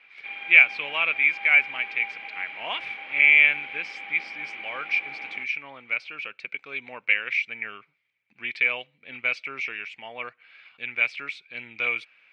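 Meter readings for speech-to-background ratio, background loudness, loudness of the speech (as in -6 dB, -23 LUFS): 13.0 dB, -35.5 LUFS, -22.5 LUFS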